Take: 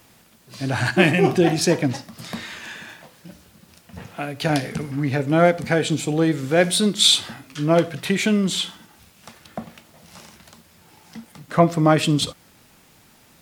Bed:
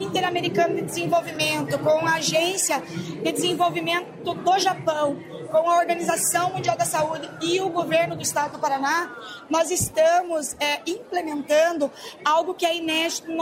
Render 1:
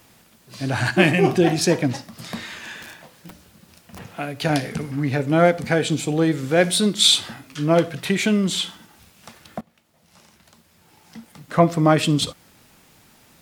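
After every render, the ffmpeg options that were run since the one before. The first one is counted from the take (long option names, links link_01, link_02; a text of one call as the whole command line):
ffmpeg -i in.wav -filter_complex "[0:a]asettb=1/sr,asplit=3[link_01][link_02][link_03];[link_01]atrim=end=2.824[link_04];[link_02]atrim=start=2.82:end=3.99,asetpts=PTS-STARTPTS,afade=type=in:duration=0.004:curve=qsin,afade=type=out:start_time=1.166:duration=0.004:curve=qsin,aeval=exprs='(mod(37.6*val(0)+1,2)-1)/37.6':channel_layout=same[link_05];[link_03]atrim=start=3.986[link_06];[link_04][link_05]acrossfade=duration=0.004:curve1=hsin:curve2=qsin[link_07];[link_07][link_06]acrossfade=duration=0.004:curve1=qsin:curve2=hsin,asplit=2[link_08][link_09];[link_08]atrim=end=9.61,asetpts=PTS-STARTPTS,afade=type=out:start_time=9.606:duration=0.004:curve=hsin:silence=0.1[link_10];[link_09]atrim=start=9.61,asetpts=PTS-STARTPTS,afade=type=in:duration=2.02:silence=0.1[link_11];[link_10][link_11]concat=n=2:v=0:a=1" out.wav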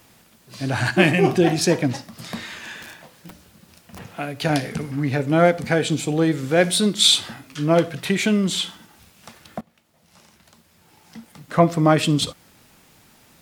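ffmpeg -i in.wav -af anull out.wav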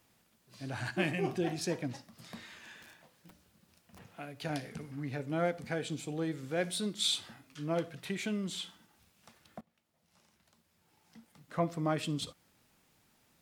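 ffmpeg -i in.wav -af "volume=-16dB" out.wav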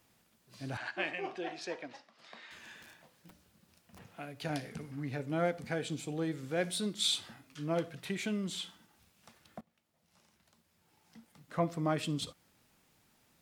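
ffmpeg -i in.wav -filter_complex "[0:a]asettb=1/sr,asplit=3[link_01][link_02][link_03];[link_01]atrim=end=0.774[link_04];[link_02]atrim=start=0.77:end=2.51,asetpts=PTS-STARTPTS,afade=type=in:duration=0.004:curve=qsin,afade=type=out:start_time=1.736:duration=0.004:curve=qsin,highpass=520,lowpass=4000[link_05];[link_03]atrim=start=2.506[link_06];[link_04][link_05]acrossfade=duration=0.004:curve1=hsin:curve2=qsin[link_07];[link_07][link_06]acrossfade=duration=0.004:curve1=qsin:curve2=hsin" out.wav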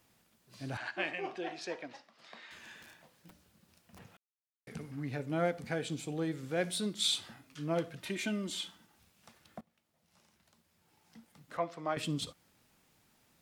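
ffmpeg -i in.wav -filter_complex "[0:a]asettb=1/sr,asplit=3[link_01][link_02][link_03];[link_01]atrim=end=8.004[link_04];[link_02]atrim=start=8:end=8.68,asetpts=PTS-STARTPTS,afade=type=in:duration=0.004:curve=qsin,afade=type=out:start_time=0.676:duration=0.004:curve=qsin,aecho=1:1:3.3:0.65,atrim=end_sample=29988[link_05];[link_03]atrim=start=8.676[link_06];[link_04][link_05]acrossfade=duration=0.004:curve1=hsin:curve2=qsin[link_07];[link_07][link_06]acrossfade=duration=0.004:curve1=qsin:curve2=hsin,asettb=1/sr,asplit=3[link_08][link_09][link_10];[link_08]atrim=end=11.574[link_11];[link_09]atrim=start=11.57:end=11.97,asetpts=PTS-STARTPTS,afade=type=in:duration=0.004:curve=qsin,afade=type=out:start_time=0.396:duration=0.004:curve=qsin,acrossover=split=440 6100:gain=0.178 1 0.178[link_12][link_13][link_14];[link_12][link_13][link_14]amix=inputs=3:normalize=0[link_15];[link_10]atrim=start=11.966[link_16];[link_11][link_15]acrossfade=duration=0.004:curve1=hsin:curve2=qsin[link_17];[link_17][link_16]acrossfade=duration=0.004:curve1=qsin:curve2=hsin,asplit=3[link_18][link_19][link_20];[link_18]atrim=end=4.17,asetpts=PTS-STARTPTS,afade=type=out:start_time=4.166:duration=0.004:curve=hsin[link_21];[link_19]atrim=start=4.17:end=4.67,asetpts=PTS-STARTPTS,volume=0[link_22];[link_20]atrim=start=4.67,asetpts=PTS-STARTPTS,afade=type=in:duration=0.004:curve=hsin[link_23];[link_21][link_22][link_23]concat=n=3:v=0:a=1" out.wav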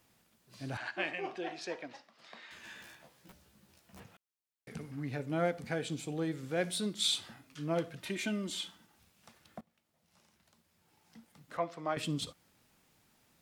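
ffmpeg -i in.wav -filter_complex "[0:a]asettb=1/sr,asplit=3[link_01][link_02][link_03];[link_01]atrim=end=2.624[link_04];[link_02]atrim=start=2.62:end=4.03,asetpts=PTS-STARTPTS,afade=type=in:duration=0.004:curve=qsin,afade=type=out:start_time=1.406:duration=0.004:curve=qsin,asplit=2[link_05][link_06];[link_06]adelay=15,volume=-2dB[link_07];[link_05][link_07]amix=inputs=2:normalize=0,atrim=end_sample=62181[link_08];[link_03]atrim=start=4.026[link_09];[link_04][link_08]acrossfade=duration=0.004:curve1=hsin:curve2=qsin[link_10];[link_10][link_09]acrossfade=duration=0.004:curve1=qsin:curve2=hsin" out.wav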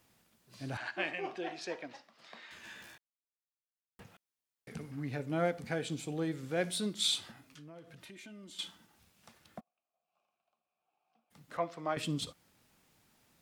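ffmpeg -i in.wav -filter_complex "[0:a]asettb=1/sr,asplit=3[link_01][link_02][link_03];[link_01]atrim=end=7.314[link_04];[link_02]atrim=start=7.31:end=8.59,asetpts=PTS-STARTPTS,afade=type=in:duration=0.004:curve=qsin,afade=type=out:start_time=1.276:duration=0.004:curve=qsin,acompressor=threshold=-51dB:ratio=4:attack=3.2:release=140:knee=1:detection=peak[link_05];[link_03]atrim=start=8.586[link_06];[link_04][link_05]acrossfade=duration=0.004:curve1=hsin:curve2=qsin[link_07];[link_07][link_06]acrossfade=duration=0.004:curve1=qsin:curve2=hsin,asplit=3[link_08][link_09][link_10];[link_08]afade=type=out:start_time=9.59:duration=0.02[link_11];[link_09]asplit=3[link_12][link_13][link_14];[link_12]bandpass=frequency=730:width_type=q:width=8,volume=0dB[link_15];[link_13]bandpass=frequency=1090:width_type=q:width=8,volume=-6dB[link_16];[link_14]bandpass=frequency=2440:width_type=q:width=8,volume=-9dB[link_17];[link_15][link_16][link_17]amix=inputs=3:normalize=0,afade=type=in:start_time=9.59:duration=0.02,afade=type=out:start_time=11.3:duration=0.02[link_18];[link_10]afade=type=in:start_time=11.3:duration=0.02[link_19];[link_11][link_18][link_19]amix=inputs=3:normalize=0,asplit=3[link_20][link_21][link_22];[link_20]atrim=end=2.98,asetpts=PTS-STARTPTS,afade=type=out:start_time=2.976:duration=0.004:curve=hsin[link_23];[link_21]atrim=start=2.98:end=3.99,asetpts=PTS-STARTPTS,volume=0[link_24];[link_22]atrim=start=3.99,asetpts=PTS-STARTPTS,afade=type=in:duration=0.004:curve=hsin[link_25];[link_23][link_24][link_25]concat=n=3:v=0:a=1" out.wav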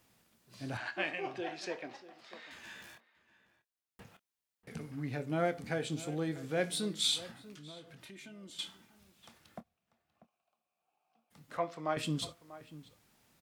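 ffmpeg -i in.wav -filter_complex "[0:a]asplit=2[link_01][link_02];[link_02]adelay=26,volume=-13dB[link_03];[link_01][link_03]amix=inputs=2:normalize=0,asplit=2[link_04][link_05];[link_05]adelay=641.4,volume=-16dB,highshelf=frequency=4000:gain=-14.4[link_06];[link_04][link_06]amix=inputs=2:normalize=0" out.wav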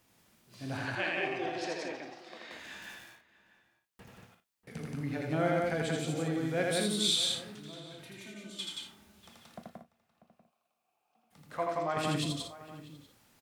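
ffmpeg -i in.wav -filter_complex "[0:a]asplit=2[link_01][link_02];[link_02]adelay=38,volume=-13.5dB[link_03];[link_01][link_03]amix=inputs=2:normalize=0,aecho=1:1:81.63|177.8|233.2:0.794|0.794|0.355" out.wav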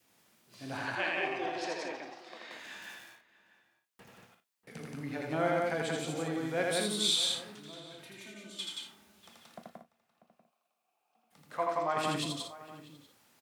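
ffmpeg -i in.wav -af "highpass=frequency=250:poles=1,adynamicequalizer=threshold=0.00251:dfrequency=980:dqfactor=2.5:tfrequency=980:tqfactor=2.5:attack=5:release=100:ratio=0.375:range=2.5:mode=boostabove:tftype=bell" out.wav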